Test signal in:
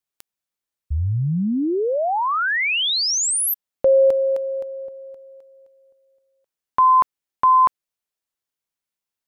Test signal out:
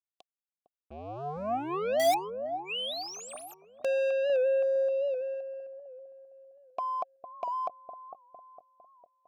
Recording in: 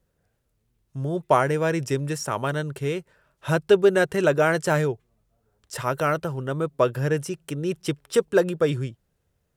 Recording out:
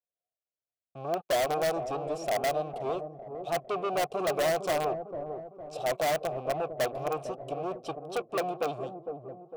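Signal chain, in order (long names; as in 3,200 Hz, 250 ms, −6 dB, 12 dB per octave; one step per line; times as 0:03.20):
Chebyshev band-stop filter 690–3,500 Hz, order 3
high-shelf EQ 11,000 Hz −2.5 dB
leveller curve on the samples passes 5
formant filter a
in parallel at −4 dB: wrap-around overflow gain 17.5 dB
on the sum: delay with a low-pass on its return 455 ms, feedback 47%, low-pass 610 Hz, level −5.5 dB
wow of a warped record 78 rpm, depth 100 cents
level −7.5 dB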